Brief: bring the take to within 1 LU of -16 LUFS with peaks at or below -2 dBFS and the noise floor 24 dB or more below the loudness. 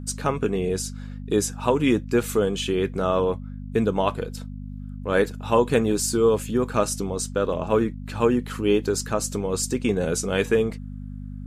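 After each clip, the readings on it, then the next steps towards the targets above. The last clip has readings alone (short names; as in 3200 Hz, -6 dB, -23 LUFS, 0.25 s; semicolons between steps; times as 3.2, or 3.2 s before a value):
hum 50 Hz; harmonics up to 250 Hz; hum level -32 dBFS; loudness -24.0 LUFS; peak -5.5 dBFS; loudness target -16.0 LUFS
-> de-hum 50 Hz, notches 5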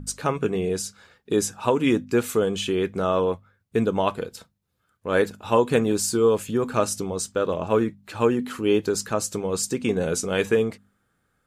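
hum none; loudness -24.0 LUFS; peak -5.5 dBFS; loudness target -16.0 LUFS
-> gain +8 dB; limiter -2 dBFS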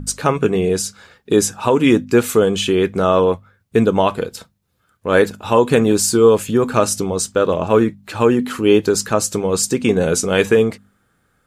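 loudness -16.5 LUFS; peak -2.0 dBFS; noise floor -64 dBFS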